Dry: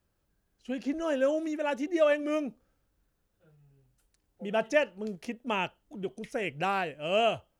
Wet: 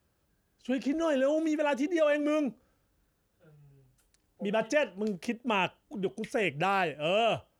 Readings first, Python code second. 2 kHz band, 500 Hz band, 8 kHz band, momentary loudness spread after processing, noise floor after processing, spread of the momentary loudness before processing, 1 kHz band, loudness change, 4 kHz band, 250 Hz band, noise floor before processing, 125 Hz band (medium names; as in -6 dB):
+1.0 dB, 0.0 dB, +2.5 dB, 8 LU, -74 dBFS, 13 LU, +1.0 dB, +0.5 dB, +1.0 dB, +2.5 dB, -77 dBFS, +3.5 dB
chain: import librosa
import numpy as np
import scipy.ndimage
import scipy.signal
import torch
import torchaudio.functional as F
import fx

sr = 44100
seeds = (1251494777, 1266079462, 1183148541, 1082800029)

p1 = fx.over_compress(x, sr, threshold_db=-31.0, ratio=-1.0)
p2 = x + (p1 * librosa.db_to_amplitude(0.0))
p3 = scipy.signal.sosfilt(scipy.signal.butter(2, 50.0, 'highpass', fs=sr, output='sos'), p2)
y = p3 * librosa.db_to_amplitude(-3.5)